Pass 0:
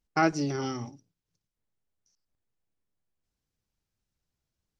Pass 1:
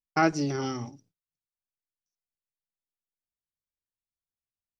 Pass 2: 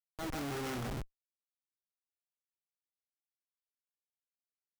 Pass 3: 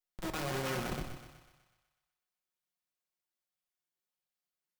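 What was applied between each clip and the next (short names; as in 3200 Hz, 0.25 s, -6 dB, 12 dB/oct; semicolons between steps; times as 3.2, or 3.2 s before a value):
gate with hold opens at -52 dBFS; gain +1 dB
thinning echo 0.156 s, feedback 68%, high-pass 1000 Hz, level -5.5 dB; auto swell 0.445 s; Schmitt trigger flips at -38 dBFS; gain +2.5 dB
minimum comb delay 5.5 ms; thinning echo 0.124 s, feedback 58%, high-pass 350 Hz, level -8.5 dB; shoebox room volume 940 m³, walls furnished, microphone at 0.93 m; gain +2.5 dB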